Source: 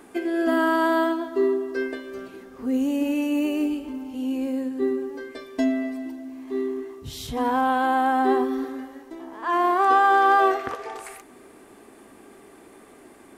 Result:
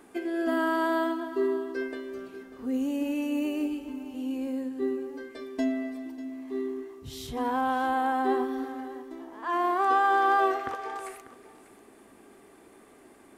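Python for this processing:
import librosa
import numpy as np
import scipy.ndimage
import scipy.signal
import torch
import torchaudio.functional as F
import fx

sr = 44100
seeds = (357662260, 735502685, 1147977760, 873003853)

y = x + 10.0 ** (-15.5 / 20.0) * np.pad(x, (int(593 * sr / 1000.0), 0))[:len(x)]
y = F.gain(torch.from_numpy(y), -5.5).numpy()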